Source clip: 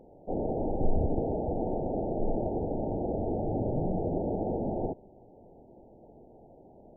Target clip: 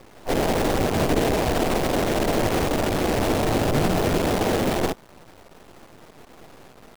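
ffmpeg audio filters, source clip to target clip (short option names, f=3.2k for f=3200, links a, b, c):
-filter_complex "[0:a]afftfilt=real='re*lt(hypot(re,im),0.447)':imag='im*lt(hypot(re,im),0.447)':win_size=1024:overlap=0.75,acrusher=bits=6:dc=4:mix=0:aa=0.000001,asplit=3[a][b][c];[b]asetrate=55563,aresample=44100,atempo=0.793701,volume=-8dB[d];[c]asetrate=66075,aresample=44100,atempo=0.66742,volume=-13dB[e];[a][d][e]amix=inputs=3:normalize=0,volume=7.5dB"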